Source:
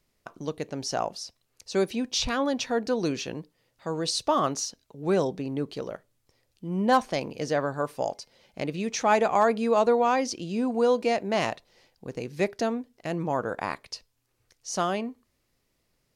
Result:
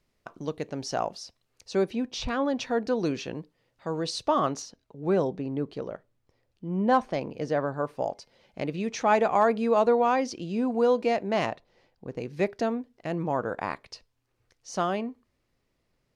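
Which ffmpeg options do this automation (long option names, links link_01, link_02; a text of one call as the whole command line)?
ffmpeg -i in.wav -af "asetnsamples=nb_out_samples=441:pad=0,asendcmd='1.75 lowpass f 1800;2.56 lowpass f 3100;4.62 lowpass f 1600;8.17 lowpass f 3100;11.46 lowpass f 1500;12.18 lowpass f 2800',lowpass=frequency=4400:poles=1" out.wav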